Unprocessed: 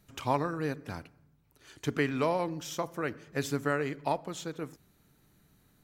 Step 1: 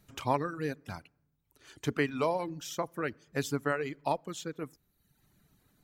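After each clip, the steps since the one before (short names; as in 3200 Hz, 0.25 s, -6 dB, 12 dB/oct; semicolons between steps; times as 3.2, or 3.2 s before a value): reverb removal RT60 0.97 s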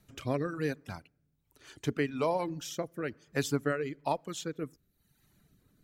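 rotary speaker horn 1.1 Hz; gain +2.5 dB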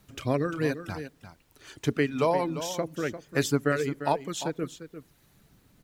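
added noise pink -73 dBFS; echo 0.348 s -11.5 dB; gain +5 dB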